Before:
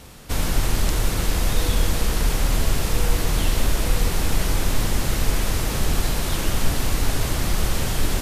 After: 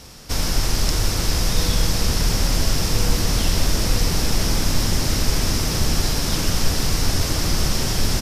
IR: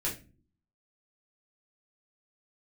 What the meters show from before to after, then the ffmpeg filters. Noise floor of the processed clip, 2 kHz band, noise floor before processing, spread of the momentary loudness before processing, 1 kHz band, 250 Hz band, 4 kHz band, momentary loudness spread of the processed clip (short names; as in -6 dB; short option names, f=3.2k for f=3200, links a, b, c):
-24 dBFS, +1.0 dB, -26 dBFS, 1 LU, +0.5 dB, +3.0 dB, +6.0 dB, 1 LU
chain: -filter_complex "[0:a]equalizer=f=5.3k:w=2.7:g=11.5,asplit=8[a][b][c][d][e][f][g][h];[b]adelay=500,afreqshift=71,volume=-12dB[i];[c]adelay=1000,afreqshift=142,volume=-16.2dB[j];[d]adelay=1500,afreqshift=213,volume=-20.3dB[k];[e]adelay=2000,afreqshift=284,volume=-24.5dB[l];[f]adelay=2500,afreqshift=355,volume=-28.6dB[m];[g]adelay=3000,afreqshift=426,volume=-32.8dB[n];[h]adelay=3500,afreqshift=497,volume=-36.9dB[o];[a][i][j][k][l][m][n][o]amix=inputs=8:normalize=0"